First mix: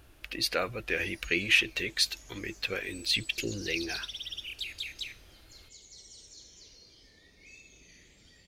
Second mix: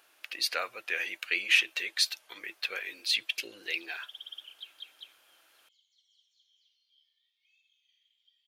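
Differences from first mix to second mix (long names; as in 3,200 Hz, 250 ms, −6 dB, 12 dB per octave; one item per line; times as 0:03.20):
background: add resonant band-pass 3,200 Hz, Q 17
master: add high-pass filter 770 Hz 12 dB per octave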